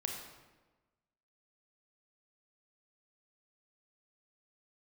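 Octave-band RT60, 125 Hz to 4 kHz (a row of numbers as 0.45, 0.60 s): 1.3, 1.3, 1.3, 1.2, 1.0, 0.85 s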